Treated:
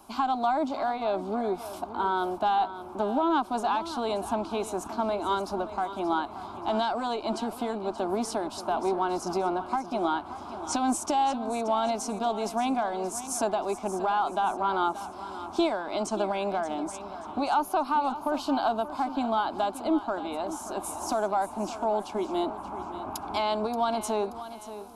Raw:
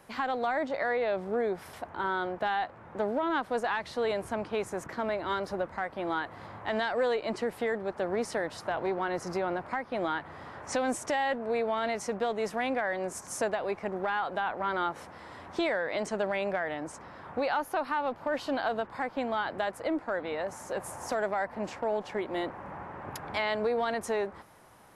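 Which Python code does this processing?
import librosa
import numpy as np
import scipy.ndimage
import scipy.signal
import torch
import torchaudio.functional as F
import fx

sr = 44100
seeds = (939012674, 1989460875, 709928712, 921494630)

p1 = fx.fixed_phaser(x, sr, hz=500.0, stages=6)
p2 = p1 + fx.echo_feedback(p1, sr, ms=579, feedback_pct=39, wet_db=-13.0, dry=0)
y = F.gain(torch.from_numpy(p2), 6.5).numpy()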